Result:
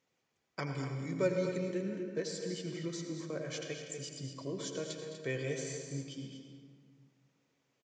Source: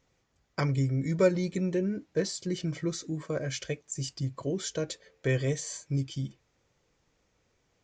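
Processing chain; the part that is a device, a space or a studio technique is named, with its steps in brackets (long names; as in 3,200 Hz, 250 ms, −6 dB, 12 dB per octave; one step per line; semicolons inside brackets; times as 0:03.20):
stadium PA (high-pass filter 170 Hz 12 dB per octave; parametric band 2,700 Hz +3 dB 0.87 octaves; loudspeakers that aren't time-aligned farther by 72 metres −12 dB, 83 metres −10 dB; convolution reverb RT60 1.8 s, pre-delay 75 ms, DRR 4.5 dB)
level −8 dB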